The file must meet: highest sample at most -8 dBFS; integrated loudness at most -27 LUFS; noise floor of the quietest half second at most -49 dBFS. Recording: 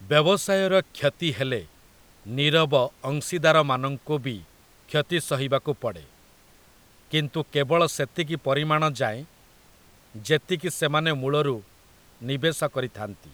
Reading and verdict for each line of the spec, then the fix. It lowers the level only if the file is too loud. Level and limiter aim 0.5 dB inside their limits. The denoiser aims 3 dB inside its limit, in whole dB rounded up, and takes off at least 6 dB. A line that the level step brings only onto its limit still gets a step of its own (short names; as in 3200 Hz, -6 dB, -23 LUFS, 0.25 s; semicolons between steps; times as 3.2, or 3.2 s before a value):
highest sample -5.5 dBFS: fail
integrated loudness -24.5 LUFS: fail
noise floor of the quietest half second -55 dBFS: OK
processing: gain -3 dB